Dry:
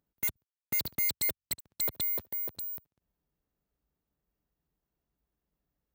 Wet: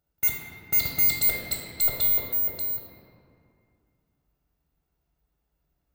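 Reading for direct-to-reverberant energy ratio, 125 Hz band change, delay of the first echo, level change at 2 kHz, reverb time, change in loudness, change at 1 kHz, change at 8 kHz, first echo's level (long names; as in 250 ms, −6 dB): −2.5 dB, +8.5 dB, no echo audible, +8.0 dB, 2.4 s, +8.5 dB, +7.5 dB, +5.0 dB, no echo audible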